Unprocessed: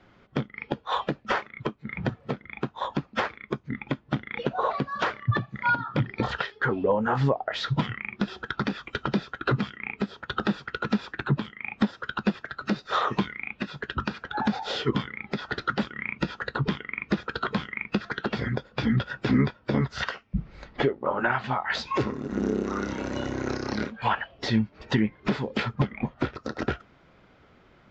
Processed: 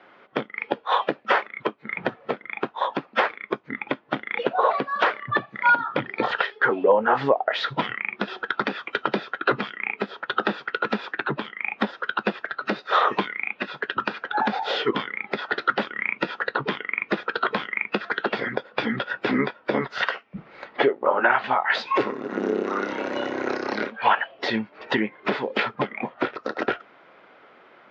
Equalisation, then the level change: high-pass 450 Hz 12 dB/octave; low-pass 2.9 kHz 12 dB/octave; dynamic bell 1.2 kHz, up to -3 dB, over -41 dBFS, Q 1; +9.0 dB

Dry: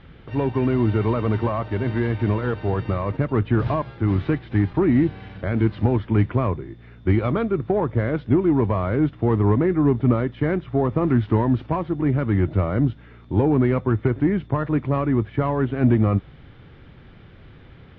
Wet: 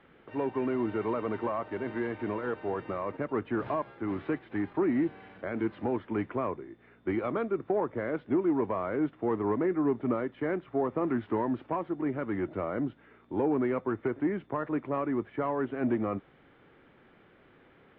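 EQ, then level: three-band isolator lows -20 dB, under 230 Hz, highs -16 dB, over 2.9 kHz; -6.0 dB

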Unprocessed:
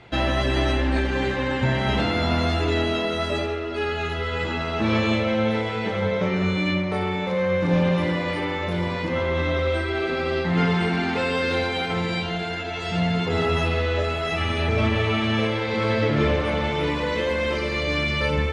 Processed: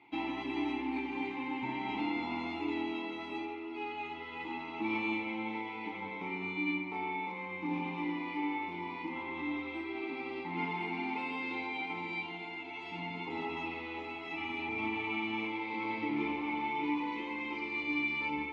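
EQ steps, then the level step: vowel filter u; bass shelf 420 Hz -11 dB; +4.5 dB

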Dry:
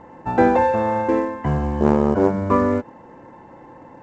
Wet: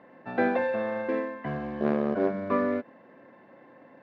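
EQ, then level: cabinet simulation 330–3600 Hz, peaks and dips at 330 Hz -9 dB, 470 Hz -9 dB, 840 Hz -8 dB, 1.3 kHz -7 dB, 2 kHz -3 dB, 2.9 kHz -6 dB; peaking EQ 920 Hz -13 dB 0.29 oct; 0.0 dB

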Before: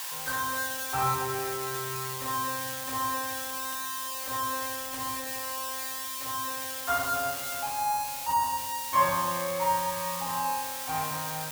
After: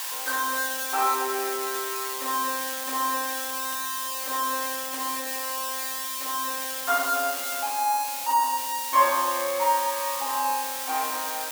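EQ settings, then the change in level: brick-wall FIR high-pass 240 Hz; +4.0 dB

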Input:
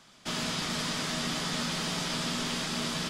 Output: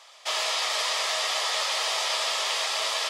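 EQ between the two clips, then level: steep high-pass 530 Hz 36 dB/octave; treble shelf 6.9 kHz -4.5 dB; band-stop 1.5 kHz, Q 5.6; +8.0 dB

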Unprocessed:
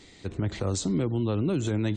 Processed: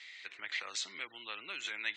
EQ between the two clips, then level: resonant high-pass 2.1 kHz, resonance Q 2.5; distance through air 130 m; +2.0 dB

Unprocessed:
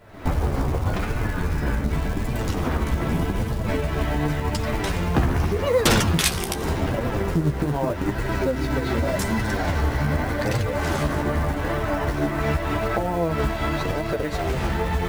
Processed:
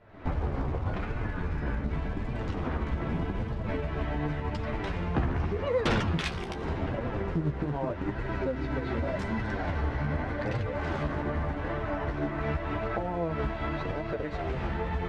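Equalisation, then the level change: low-pass 3 kHz 12 dB/octave; -7.5 dB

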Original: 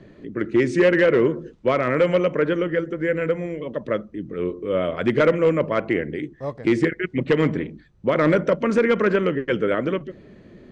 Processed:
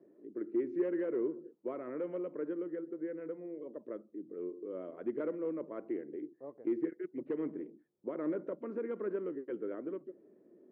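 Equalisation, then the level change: dynamic bell 530 Hz, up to -6 dB, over -29 dBFS, Q 1.2; ladder band-pass 400 Hz, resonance 45%; bass shelf 390 Hz -4 dB; -2.5 dB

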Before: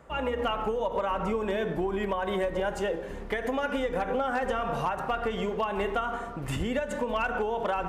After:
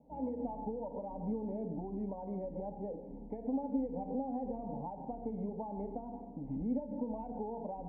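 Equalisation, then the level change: cascade formant filter u; treble shelf 3.4 kHz -10 dB; static phaser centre 350 Hz, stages 6; +6.0 dB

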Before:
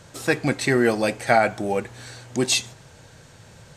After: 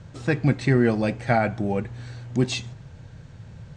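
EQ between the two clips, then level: low-pass 8.8 kHz 24 dB/octave; distance through air 51 m; tone controls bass +13 dB, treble -4 dB; -4.5 dB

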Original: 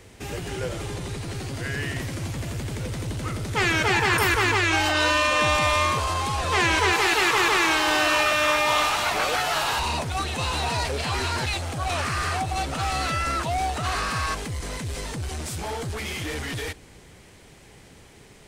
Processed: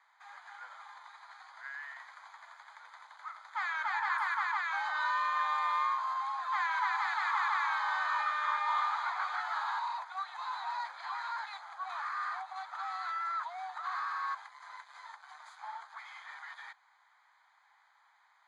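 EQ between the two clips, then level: boxcar filter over 16 samples; steep high-pass 880 Hz 48 dB/octave; distance through air 67 m; -3.0 dB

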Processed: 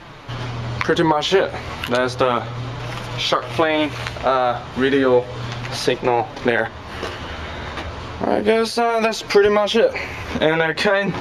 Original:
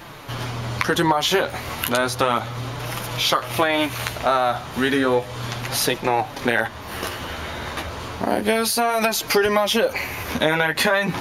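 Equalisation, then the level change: low-pass 5.3 kHz 12 dB/octave; dynamic bell 440 Hz, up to +6 dB, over -35 dBFS, Q 1.7; bass shelf 110 Hz +4.5 dB; 0.0 dB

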